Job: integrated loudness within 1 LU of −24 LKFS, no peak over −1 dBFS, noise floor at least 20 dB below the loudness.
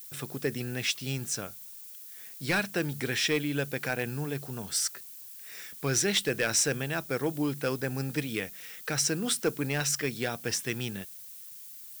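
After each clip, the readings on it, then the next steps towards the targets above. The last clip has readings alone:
share of clipped samples 0.2%; peaks flattened at −19.0 dBFS; background noise floor −46 dBFS; target noise floor −50 dBFS; integrated loudness −30.0 LKFS; sample peak −19.0 dBFS; target loudness −24.0 LKFS
→ clipped peaks rebuilt −19 dBFS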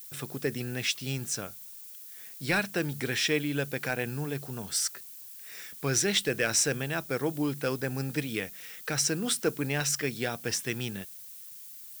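share of clipped samples 0.0%; background noise floor −46 dBFS; target noise floor −50 dBFS
→ broadband denoise 6 dB, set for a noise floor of −46 dBFS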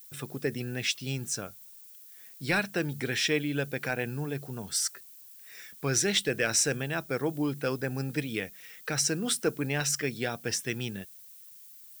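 background noise floor −51 dBFS; integrated loudness −30.0 LKFS; sample peak −13.0 dBFS; target loudness −24.0 LKFS
→ level +6 dB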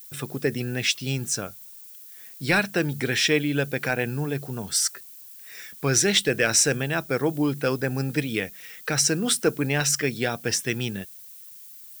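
integrated loudness −24.0 LKFS; sample peak −7.0 dBFS; background noise floor −45 dBFS

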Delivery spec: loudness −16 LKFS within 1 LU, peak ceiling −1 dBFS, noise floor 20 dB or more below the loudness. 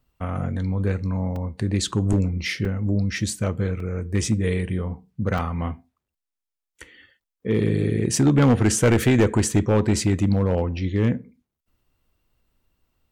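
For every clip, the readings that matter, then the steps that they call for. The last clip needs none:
share of clipped samples 0.8%; peaks flattened at −11.5 dBFS; number of dropouts 5; longest dropout 2.8 ms; integrated loudness −22.5 LKFS; sample peak −11.5 dBFS; target loudness −16.0 LKFS
→ clipped peaks rebuilt −11.5 dBFS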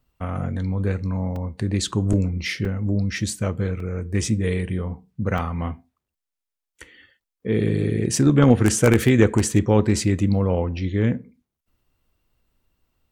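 share of clipped samples 0.0%; number of dropouts 5; longest dropout 2.8 ms
→ repair the gap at 0:01.36/0:02.13/0:02.65/0:03.80/0:05.38, 2.8 ms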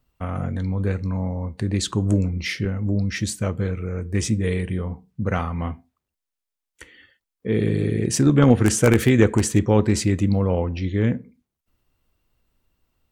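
number of dropouts 0; integrated loudness −22.0 LKFS; sample peak −2.5 dBFS; target loudness −16.0 LKFS
→ level +6 dB
brickwall limiter −1 dBFS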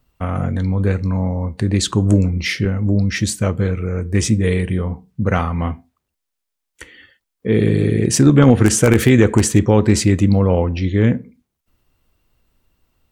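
integrated loudness −16.5 LKFS; sample peak −1.0 dBFS; background noise floor −78 dBFS

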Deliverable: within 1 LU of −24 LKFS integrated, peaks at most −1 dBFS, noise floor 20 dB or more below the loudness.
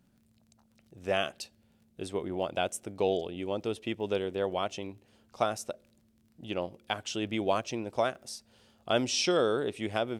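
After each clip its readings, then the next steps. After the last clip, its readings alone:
crackle rate 26 per second; integrated loudness −32.0 LKFS; sample peak −13.5 dBFS; target loudness −24.0 LKFS
→ click removal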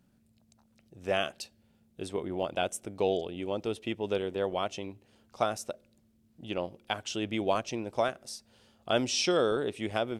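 crackle rate 0 per second; integrated loudness −32.0 LKFS; sample peak −13.5 dBFS; target loudness −24.0 LKFS
→ level +8 dB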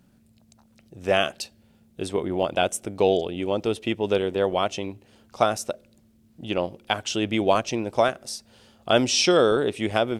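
integrated loudness −24.0 LKFS; sample peak −5.5 dBFS; background noise floor −59 dBFS

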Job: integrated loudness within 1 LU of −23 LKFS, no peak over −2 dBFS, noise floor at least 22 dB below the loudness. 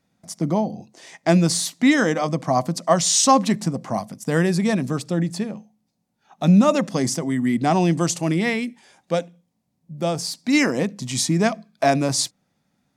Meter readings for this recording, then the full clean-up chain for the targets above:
integrated loudness −21.0 LKFS; sample peak −3.0 dBFS; target loudness −23.0 LKFS
→ level −2 dB

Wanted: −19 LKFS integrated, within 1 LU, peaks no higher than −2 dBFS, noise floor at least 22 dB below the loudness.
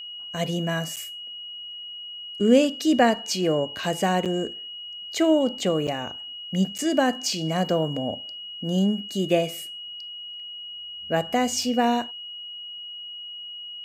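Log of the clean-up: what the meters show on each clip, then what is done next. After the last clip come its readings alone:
number of dropouts 4; longest dropout 7.1 ms; interfering tone 2,900 Hz; level of the tone −35 dBFS; integrated loudness −26.0 LKFS; sample peak −6.0 dBFS; target loudness −19.0 LKFS
→ repair the gap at 0:00.96/0:04.25/0:05.87/0:06.78, 7.1 ms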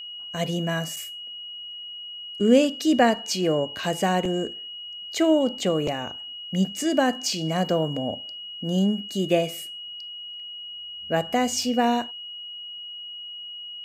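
number of dropouts 0; interfering tone 2,900 Hz; level of the tone −35 dBFS
→ notch filter 2,900 Hz, Q 30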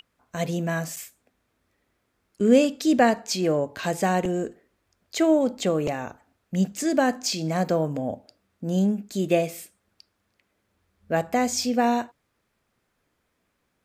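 interfering tone none found; integrated loudness −24.5 LKFS; sample peak −6.5 dBFS; target loudness −19.0 LKFS
→ level +5.5 dB
brickwall limiter −2 dBFS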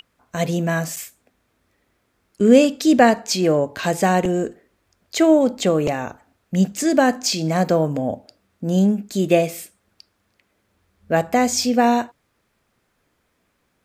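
integrated loudness −19.0 LKFS; sample peak −2.0 dBFS; background noise floor −69 dBFS

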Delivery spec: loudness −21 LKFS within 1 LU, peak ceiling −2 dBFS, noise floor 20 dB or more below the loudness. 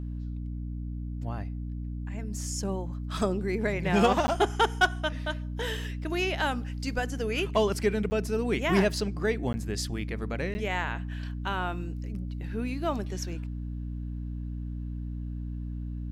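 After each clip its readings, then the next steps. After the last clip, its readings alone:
number of dropouts 4; longest dropout 10 ms; mains hum 60 Hz; hum harmonics up to 300 Hz; level of the hum −32 dBFS; integrated loudness −30.5 LKFS; sample peak −12.5 dBFS; target loudness −21.0 LKFS
→ repair the gap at 0:04.27/0:08.10/0:09.53/0:10.54, 10 ms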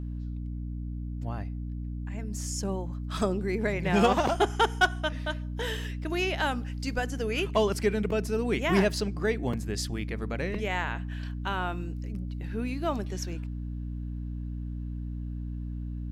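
number of dropouts 0; mains hum 60 Hz; hum harmonics up to 300 Hz; level of the hum −32 dBFS
→ hum removal 60 Hz, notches 5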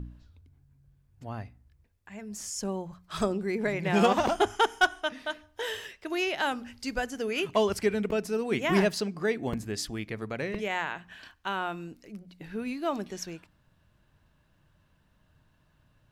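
mains hum none found; integrated loudness −30.0 LKFS; sample peak −13.0 dBFS; target loudness −21.0 LKFS
→ level +9 dB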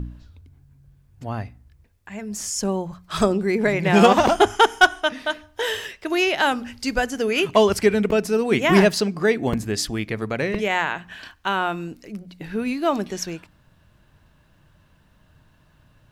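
integrated loudness −21.0 LKFS; sample peak −4.0 dBFS; background noise floor −58 dBFS

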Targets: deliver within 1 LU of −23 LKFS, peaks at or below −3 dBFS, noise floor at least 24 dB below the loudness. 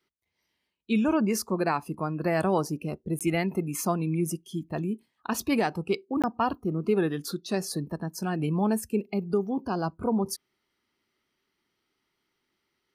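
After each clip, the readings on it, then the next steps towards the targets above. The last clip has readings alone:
number of dropouts 2; longest dropout 17 ms; integrated loudness −29.0 LKFS; sample peak −14.5 dBFS; target loudness −23.0 LKFS
→ repair the gap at 0:03.19/0:06.22, 17 ms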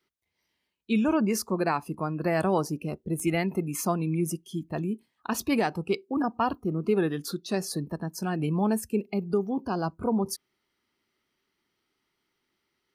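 number of dropouts 0; integrated loudness −29.0 LKFS; sample peak −14.5 dBFS; target loudness −23.0 LKFS
→ level +6 dB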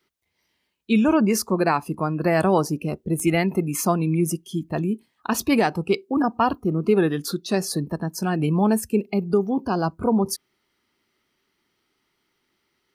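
integrated loudness −23.0 LKFS; sample peak −8.5 dBFS; background noise floor −74 dBFS

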